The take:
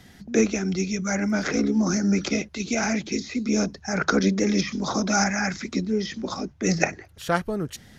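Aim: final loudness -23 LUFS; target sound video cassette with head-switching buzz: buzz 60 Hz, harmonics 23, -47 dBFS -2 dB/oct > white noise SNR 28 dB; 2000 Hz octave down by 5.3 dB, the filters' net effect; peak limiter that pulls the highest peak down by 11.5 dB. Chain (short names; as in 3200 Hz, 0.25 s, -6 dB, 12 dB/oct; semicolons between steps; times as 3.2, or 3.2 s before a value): bell 2000 Hz -7.5 dB; limiter -17 dBFS; buzz 60 Hz, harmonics 23, -47 dBFS -2 dB/oct; white noise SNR 28 dB; gain +4.5 dB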